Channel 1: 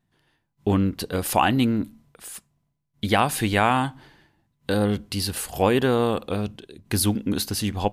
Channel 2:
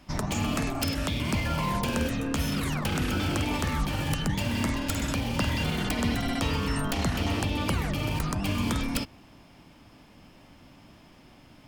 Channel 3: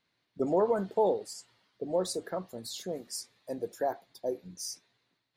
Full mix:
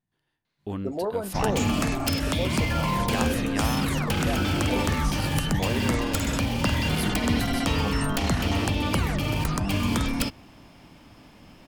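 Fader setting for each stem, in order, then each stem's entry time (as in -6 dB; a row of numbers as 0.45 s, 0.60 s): -11.5 dB, +3.0 dB, -2.5 dB; 0.00 s, 1.25 s, 0.45 s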